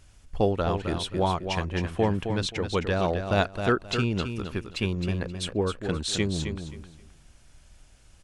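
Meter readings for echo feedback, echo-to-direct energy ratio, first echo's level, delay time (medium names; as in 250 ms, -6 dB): 23%, -7.5 dB, -7.5 dB, 264 ms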